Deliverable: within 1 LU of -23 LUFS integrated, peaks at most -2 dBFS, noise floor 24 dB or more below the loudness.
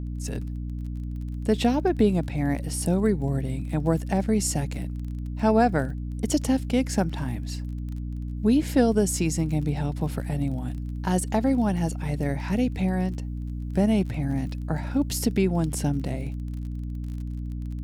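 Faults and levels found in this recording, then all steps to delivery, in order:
tick rate 32 per s; hum 60 Hz; highest harmonic 300 Hz; hum level -29 dBFS; loudness -26.5 LUFS; peak level -8.5 dBFS; loudness target -23.0 LUFS
-> de-click; hum notches 60/120/180/240/300 Hz; trim +3.5 dB

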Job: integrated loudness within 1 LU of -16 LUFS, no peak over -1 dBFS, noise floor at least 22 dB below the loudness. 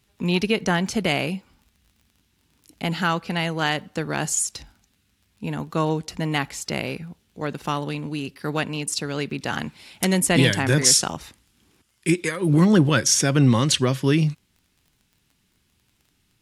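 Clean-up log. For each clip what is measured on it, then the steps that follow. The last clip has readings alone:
tick rate 23 per s; loudness -22.0 LUFS; peak level -3.5 dBFS; loudness target -16.0 LUFS
-> de-click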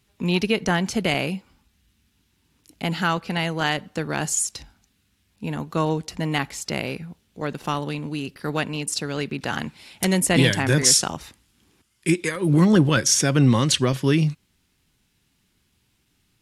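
tick rate 0.061 per s; loudness -22.0 LUFS; peak level -3.5 dBFS; loudness target -16.0 LUFS
-> trim +6 dB; peak limiter -1 dBFS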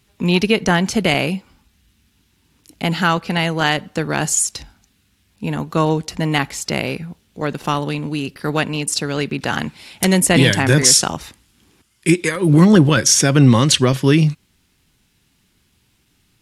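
loudness -16.5 LUFS; peak level -1.0 dBFS; noise floor -62 dBFS

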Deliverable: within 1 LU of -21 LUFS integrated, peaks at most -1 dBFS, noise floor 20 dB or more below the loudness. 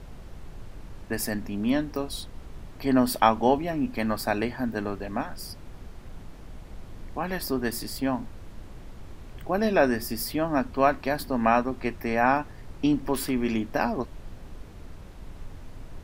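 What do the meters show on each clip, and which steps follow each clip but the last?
noise floor -44 dBFS; noise floor target -47 dBFS; loudness -27.0 LUFS; peak level -4.5 dBFS; loudness target -21.0 LUFS
-> noise print and reduce 6 dB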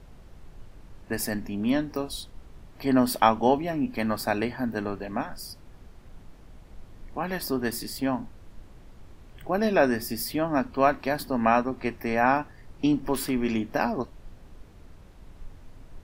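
noise floor -50 dBFS; loudness -27.0 LUFS; peak level -5.0 dBFS; loudness target -21.0 LUFS
-> trim +6 dB; peak limiter -1 dBFS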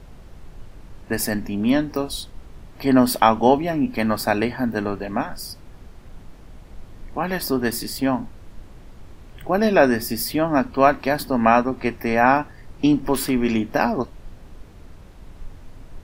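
loudness -21.0 LUFS; peak level -1.0 dBFS; noise floor -44 dBFS

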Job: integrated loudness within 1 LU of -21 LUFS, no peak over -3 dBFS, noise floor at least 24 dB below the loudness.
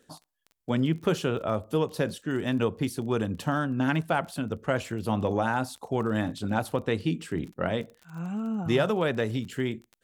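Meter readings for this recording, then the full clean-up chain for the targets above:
tick rate 25 per s; loudness -29.0 LUFS; peak level -11.5 dBFS; loudness target -21.0 LUFS
-> de-click; trim +8 dB

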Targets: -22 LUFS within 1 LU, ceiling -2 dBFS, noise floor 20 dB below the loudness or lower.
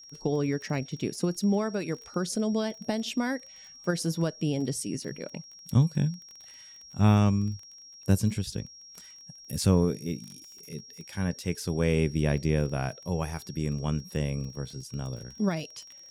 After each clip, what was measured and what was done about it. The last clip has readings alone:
tick rate 20 per s; steady tone 5.6 kHz; tone level -47 dBFS; loudness -29.0 LUFS; peak level -11.5 dBFS; loudness target -22.0 LUFS
-> de-click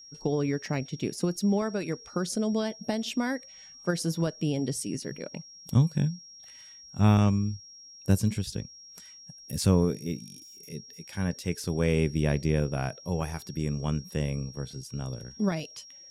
tick rate 0 per s; steady tone 5.6 kHz; tone level -47 dBFS
-> band-stop 5.6 kHz, Q 30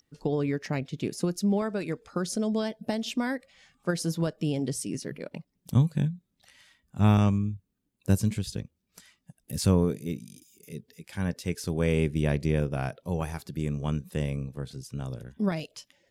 steady tone not found; loudness -29.5 LUFS; peak level -11.5 dBFS; loudness target -22.0 LUFS
-> trim +7.5 dB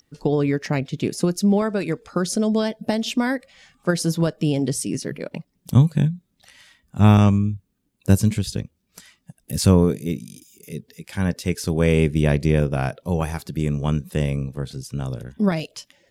loudness -22.0 LUFS; peak level -4.0 dBFS; noise floor -70 dBFS

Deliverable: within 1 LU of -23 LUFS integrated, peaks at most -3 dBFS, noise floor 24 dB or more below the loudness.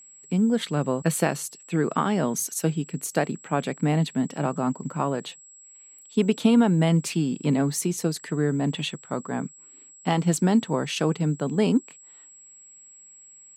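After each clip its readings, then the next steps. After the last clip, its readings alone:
steady tone 7.7 kHz; tone level -47 dBFS; loudness -25.0 LUFS; peak level -7.5 dBFS; loudness target -23.0 LUFS
-> band-stop 7.7 kHz, Q 30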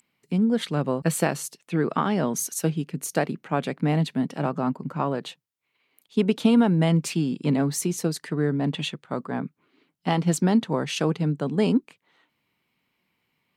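steady tone not found; loudness -25.0 LUFS; peak level -7.5 dBFS; loudness target -23.0 LUFS
-> trim +2 dB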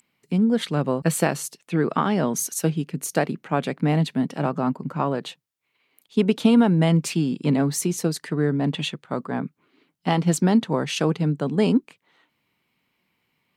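loudness -23.0 LUFS; peak level -5.5 dBFS; noise floor -73 dBFS

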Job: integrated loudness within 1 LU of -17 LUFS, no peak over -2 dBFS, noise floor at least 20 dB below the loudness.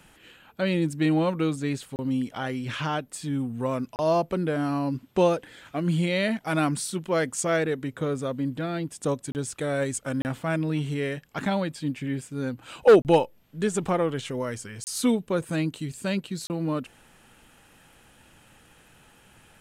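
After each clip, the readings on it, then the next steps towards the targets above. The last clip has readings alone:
dropouts 7; longest dropout 29 ms; loudness -27.0 LUFS; peak level -9.0 dBFS; loudness target -17.0 LUFS
-> interpolate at 1.96/3.96/9.32/10.22/13.02/14.84/16.47 s, 29 ms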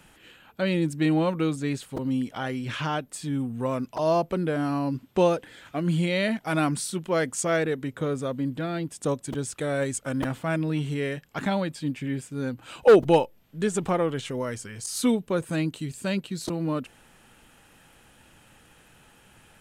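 dropouts 0; loudness -27.0 LUFS; peak level -9.0 dBFS; loudness target -17.0 LUFS
-> trim +10 dB; peak limiter -2 dBFS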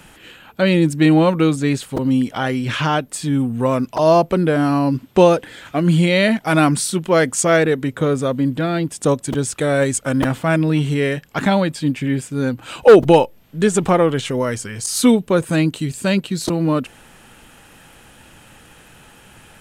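loudness -17.5 LUFS; peak level -2.0 dBFS; noise floor -47 dBFS

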